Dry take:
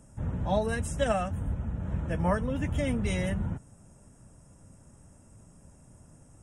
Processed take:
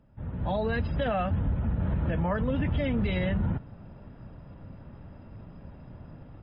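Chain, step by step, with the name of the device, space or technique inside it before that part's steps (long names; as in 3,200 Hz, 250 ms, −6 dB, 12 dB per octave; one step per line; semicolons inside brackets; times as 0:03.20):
low-bitrate web radio (automatic gain control gain up to 15 dB; brickwall limiter −14 dBFS, peak gain reduction 11.5 dB; level −5.5 dB; MP3 40 kbit/s 11,025 Hz)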